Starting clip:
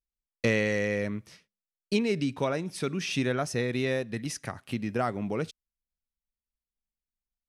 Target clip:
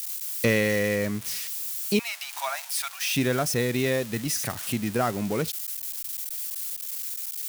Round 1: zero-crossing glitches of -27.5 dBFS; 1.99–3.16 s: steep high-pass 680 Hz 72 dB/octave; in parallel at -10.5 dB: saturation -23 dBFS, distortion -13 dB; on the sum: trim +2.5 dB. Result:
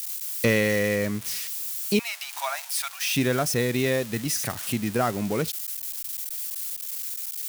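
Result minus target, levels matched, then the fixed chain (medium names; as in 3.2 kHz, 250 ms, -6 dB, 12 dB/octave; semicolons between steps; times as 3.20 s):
saturation: distortion -8 dB
zero-crossing glitches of -27.5 dBFS; 1.99–3.16 s: steep high-pass 680 Hz 72 dB/octave; in parallel at -10.5 dB: saturation -34 dBFS, distortion -6 dB; on the sum: trim +2.5 dB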